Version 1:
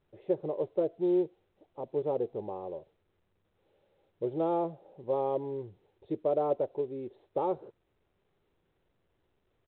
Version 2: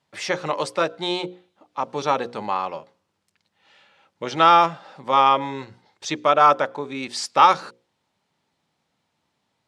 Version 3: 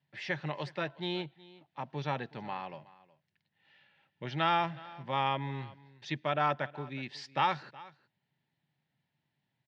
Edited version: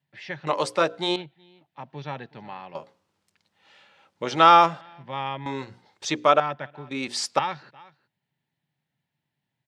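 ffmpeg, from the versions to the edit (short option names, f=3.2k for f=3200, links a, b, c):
-filter_complex "[1:a]asplit=4[a][b][c][d];[2:a]asplit=5[e][f][g][h][i];[e]atrim=end=0.472[j];[a]atrim=start=0.468:end=1.162[k];[f]atrim=start=1.158:end=2.752[l];[b]atrim=start=2.748:end=4.812[m];[g]atrim=start=4.808:end=5.462[n];[c]atrim=start=5.458:end=6.402[o];[h]atrim=start=6.398:end=6.912[p];[d]atrim=start=6.908:end=7.392[q];[i]atrim=start=7.388[r];[j][k]acrossfade=d=0.004:c1=hsin:c2=hsin[s];[s][l]acrossfade=d=0.004:c1=hsin:c2=hsin[t];[t][m]acrossfade=d=0.004:c1=hsin:c2=hsin[u];[u][n]acrossfade=d=0.004:c1=hsin:c2=hsin[v];[v][o]acrossfade=d=0.004:c1=hsin:c2=hsin[w];[w][p]acrossfade=d=0.004:c1=hsin:c2=hsin[x];[x][q]acrossfade=d=0.004:c1=hsin:c2=hsin[y];[y][r]acrossfade=d=0.004:c1=hsin:c2=hsin"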